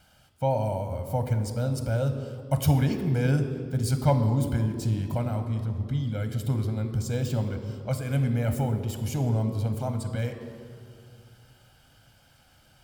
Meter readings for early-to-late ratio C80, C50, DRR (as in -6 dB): 9.5 dB, 8.5 dB, 6.5 dB